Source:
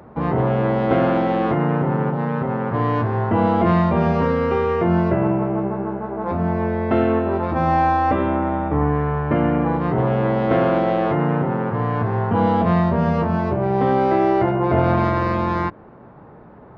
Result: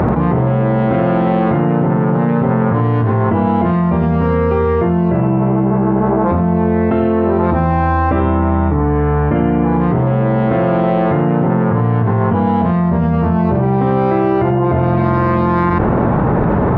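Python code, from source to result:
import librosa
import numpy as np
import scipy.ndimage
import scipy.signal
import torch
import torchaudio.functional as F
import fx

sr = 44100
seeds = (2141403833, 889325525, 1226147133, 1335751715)

y = fx.bass_treble(x, sr, bass_db=5, treble_db=-10)
y = y + 10.0 ** (-8.0 / 20.0) * np.pad(y, (int(86 * sr / 1000.0), 0))[:len(y)]
y = fx.env_flatten(y, sr, amount_pct=100)
y = y * 10.0 ** (-4.0 / 20.0)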